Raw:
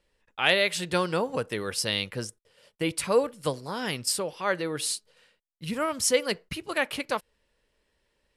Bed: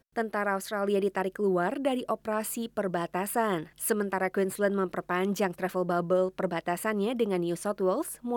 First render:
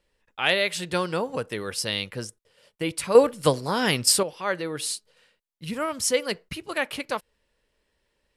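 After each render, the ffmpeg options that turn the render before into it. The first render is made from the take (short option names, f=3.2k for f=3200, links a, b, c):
-filter_complex "[0:a]asplit=3[a][b][c];[a]atrim=end=3.152[d];[b]atrim=start=3.148:end=4.232,asetpts=PTS-STARTPTS,volume=8dB[e];[c]atrim=start=4.228[f];[d][e]acrossfade=d=0.004:c1=hsin:c2=hsin[g];[g][f]acrossfade=d=0.004:c1=hsin:c2=hsin"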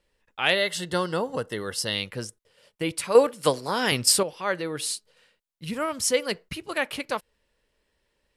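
-filter_complex "[0:a]asettb=1/sr,asplit=3[a][b][c];[a]atrim=end=0.554[d];[b]atrim=start=0.55:end=1.95,asetpts=PTS-STARTPTS,afade=t=in:d=0.004:c=qsin,afade=t=out:st=1.396:d=0.004:c=qsin,asuperstop=centerf=2400:order=8:qfactor=5.5[e];[c]atrim=start=1.946[f];[d][e]acrossfade=d=0.004:c1=hsin:c2=qsin[g];[g][f]acrossfade=d=0.004:c1=qsin:c2=hsin,asettb=1/sr,asplit=3[h][i][j];[h]atrim=end=3.014[k];[i]atrim=start=3.01:end=3.92,asetpts=PTS-STARTPTS,afade=t=in:d=0.004:c=qsin,afade=t=out:st=0.906:d=0.004:c=qsin,highpass=f=290:p=1[l];[j]atrim=start=3.916[m];[k][l]acrossfade=d=0.004:c1=hsin:c2=qsin[n];[n][m]acrossfade=d=0.004:c1=qsin:c2=hsin"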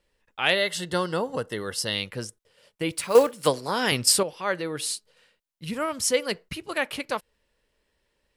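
-filter_complex "[0:a]asplit=3[a][b][c];[a]afade=t=out:st=2.91:d=0.02[d];[b]acrusher=bits=5:mode=log:mix=0:aa=0.000001,afade=t=in:st=2.91:d=0.02,afade=t=out:st=3.46:d=0.02[e];[c]afade=t=in:st=3.46:d=0.02[f];[d][e][f]amix=inputs=3:normalize=0"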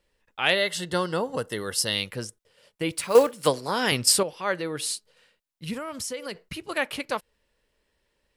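-filter_complex "[0:a]asettb=1/sr,asplit=3[a][b][c];[a]atrim=end=1.374[d];[b]atrim=start=1.37:end=2.16,asetpts=PTS-STARTPTS,afade=t=in:d=0.004:c=qsin,afade=t=out:st=0.786:d=0.004:c=qsin,highshelf=f=6.2k:g=7.5[e];[c]atrim=start=2.156[f];[d][e]acrossfade=d=0.004:c1=hsin:c2=qsin[g];[g][f]acrossfade=d=0.004:c1=qsin:c2=hsin,asettb=1/sr,asplit=3[h][i][j];[h]atrim=end=5.774[k];[i]atrim=start=5.77:end=6.65,asetpts=PTS-STARTPTS,afade=t=in:d=0.004:c=qsin,afade=t=out:st=0.876:d=0.004:c=qsin,acompressor=threshold=-29dB:ratio=8:attack=3.2:release=140:knee=1:detection=peak[l];[j]atrim=start=6.646[m];[k][l]acrossfade=d=0.004:c1=hsin:c2=qsin[n];[n][m]acrossfade=d=0.004:c1=qsin:c2=hsin"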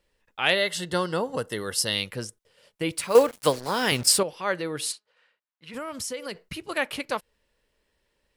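-filter_complex "[0:a]asettb=1/sr,asplit=3[a][b][c];[a]atrim=end=3.284[d];[b]atrim=start=3.28:end=4.18,asetpts=PTS-STARTPTS,afade=t=in:d=0.004:c=qsin,afade=t=out:st=0.896:d=0.004:c=qsin,acrusher=bits=5:mix=0:aa=0.5[e];[c]atrim=start=4.176[f];[d][e]acrossfade=d=0.004:c1=hsin:c2=qsin[g];[g][f]acrossfade=d=0.004:c1=qsin:c2=hsin,asplit=3[h][i][j];[h]afade=t=out:st=4.91:d=0.02[k];[i]bandpass=f=1.3k:t=q:w=0.88,afade=t=in:st=4.91:d=0.02,afade=t=out:st=5.73:d=0.02[l];[j]afade=t=in:st=5.73:d=0.02[m];[k][l][m]amix=inputs=3:normalize=0"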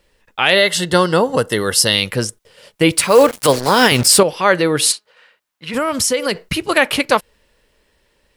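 -af "dynaudnorm=f=320:g=13:m=6.5dB,alimiter=level_in=12.5dB:limit=-1dB:release=50:level=0:latency=1"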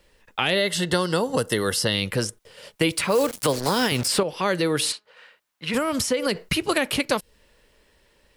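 -filter_complex "[0:a]acrossover=split=400|3600[a][b][c];[a]acompressor=threshold=-25dB:ratio=4[d];[b]acompressor=threshold=-25dB:ratio=4[e];[c]acompressor=threshold=-29dB:ratio=4[f];[d][e][f]amix=inputs=3:normalize=0"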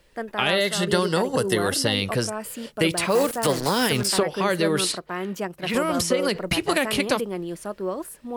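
-filter_complex "[1:a]volume=-1.5dB[a];[0:a][a]amix=inputs=2:normalize=0"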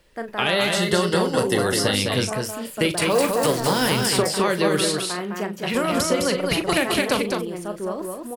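-filter_complex "[0:a]asplit=2[a][b];[b]adelay=39,volume=-10dB[c];[a][c]amix=inputs=2:normalize=0,aecho=1:1:209:0.631"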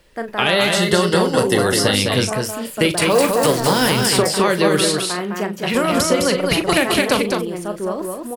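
-af "volume=4.5dB,alimiter=limit=-2dB:level=0:latency=1"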